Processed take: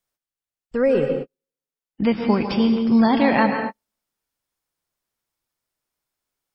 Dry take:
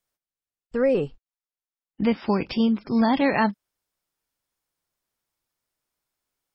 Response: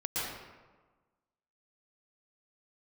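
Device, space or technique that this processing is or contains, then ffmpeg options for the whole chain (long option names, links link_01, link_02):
keyed gated reverb: -filter_complex "[0:a]asplit=3[link_01][link_02][link_03];[1:a]atrim=start_sample=2205[link_04];[link_02][link_04]afir=irnorm=-1:irlink=0[link_05];[link_03]apad=whole_len=288491[link_06];[link_05][link_06]sidechaingate=range=-54dB:threshold=-47dB:ratio=16:detection=peak,volume=-8dB[link_07];[link_01][link_07]amix=inputs=2:normalize=0"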